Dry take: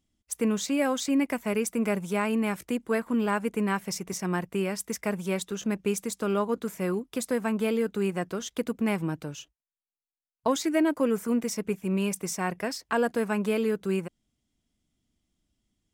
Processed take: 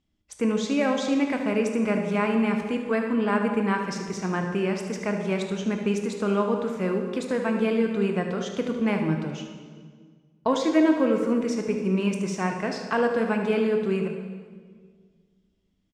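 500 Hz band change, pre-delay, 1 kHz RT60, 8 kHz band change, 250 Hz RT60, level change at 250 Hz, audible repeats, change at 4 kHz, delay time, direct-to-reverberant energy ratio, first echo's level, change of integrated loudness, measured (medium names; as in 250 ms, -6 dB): +3.5 dB, 14 ms, 1.6 s, -6.0 dB, 2.3 s, +3.5 dB, 1, +1.0 dB, 75 ms, 3.0 dB, -10.5 dB, +3.0 dB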